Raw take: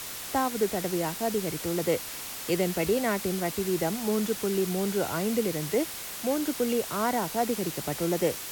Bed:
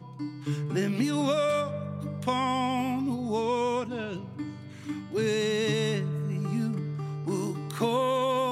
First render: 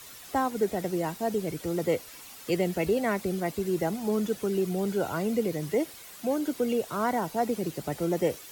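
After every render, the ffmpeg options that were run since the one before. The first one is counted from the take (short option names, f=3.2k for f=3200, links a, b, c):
-af "afftdn=nr=11:nf=-38"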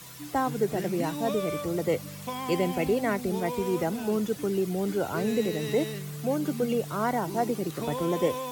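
-filter_complex "[1:a]volume=-7.5dB[a];[0:a][a]amix=inputs=2:normalize=0"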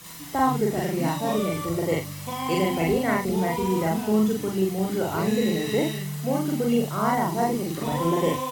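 -filter_complex "[0:a]asplit=2[a][b];[b]adelay=42,volume=-4dB[c];[a][c]amix=inputs=2:normalize=0,aecho=1:1:42|43:0.531|0.562"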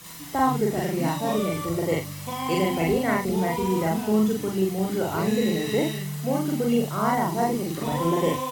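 -af anull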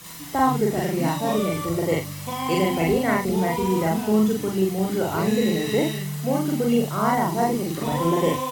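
-af "volume=2dB"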